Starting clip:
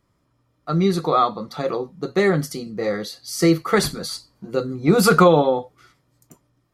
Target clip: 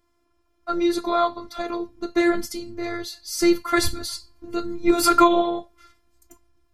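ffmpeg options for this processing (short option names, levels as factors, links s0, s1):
-af "asubboost=boost=6.5:cutoff=140,afftfilt=real='hypot(re,im)*cos(PI*b)':imag='0':win_size=512:overlap=0.75,volume=1.41"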